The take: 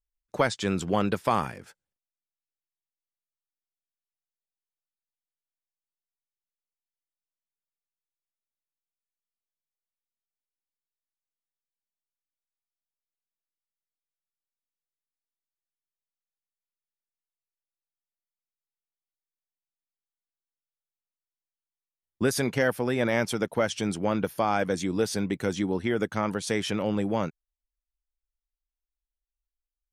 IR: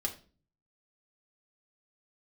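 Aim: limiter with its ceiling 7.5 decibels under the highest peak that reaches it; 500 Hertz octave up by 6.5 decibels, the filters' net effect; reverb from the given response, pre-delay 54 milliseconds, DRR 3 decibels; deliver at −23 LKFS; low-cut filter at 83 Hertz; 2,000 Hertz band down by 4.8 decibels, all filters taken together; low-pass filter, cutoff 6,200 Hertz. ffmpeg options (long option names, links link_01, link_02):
-filter_complex "[0:a]highpass=83,lowpass=6200,equalizer=frequency=500:width_type=o:gain=8,equalizer=frequency=2000:width_type=o:gain=-7,alimiter=limit=-14.5dB:level=0:latency=1,asplit=2[link_01][link_02];[1:a]atrim=start_sample=2205,adelay=54[link_03];[link_02][link_03]afir=irnorm=-1:irlink=0,volume=-5.5dB[link_04];[link_01][link_04]amix=inputs=2:normalize=0,volume=1dB"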